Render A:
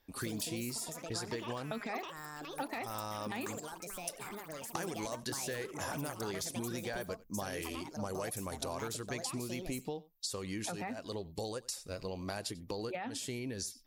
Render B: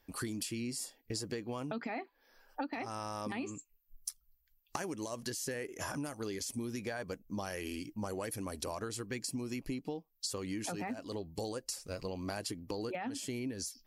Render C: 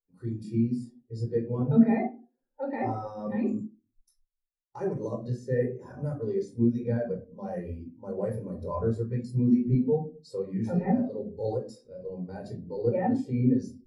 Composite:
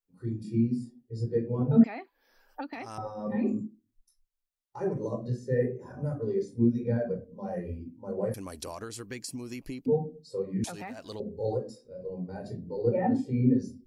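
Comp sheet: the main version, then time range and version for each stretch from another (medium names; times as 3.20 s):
C
1.84–2.98 s: from B
8.34–9.86 s: from B
10.64–11.20 s: from A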